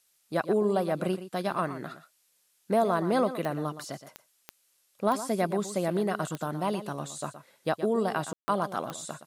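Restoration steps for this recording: de-click; room tone fill 8.33–8.48; expander -62 dBFS, range -21 dB; inverse comb 0.119 s -12.5 dB

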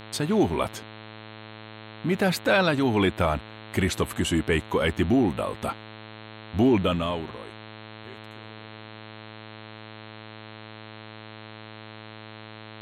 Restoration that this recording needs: de-hum 108.9 Hz, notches 39

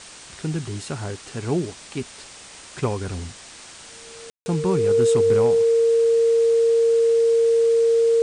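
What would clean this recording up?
clip repair -11 dBFS; notch 460 Hz, Q 30; room tone fill 4.3–4.46; noise print and reduce 24 dB

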